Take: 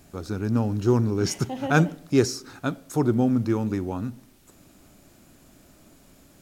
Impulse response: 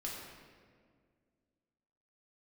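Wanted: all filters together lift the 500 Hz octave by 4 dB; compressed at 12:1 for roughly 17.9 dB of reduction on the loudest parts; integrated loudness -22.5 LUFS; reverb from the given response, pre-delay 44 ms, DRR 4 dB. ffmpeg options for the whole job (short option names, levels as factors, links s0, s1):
-filter_complex "[0:a]equalizer=f=500:t=o:g=5.5,acompressor=threshold=0.0316:ratio=12,asplit=2[s0][s1];[1:a]atrim=start_sample=2205,adelay=44[s2];[s1][s2]afir=irnorm=-1:irlink=0,volume=0.596[s3];[s0][s3]amix=inputs=2:normalize=0,volume=3.76"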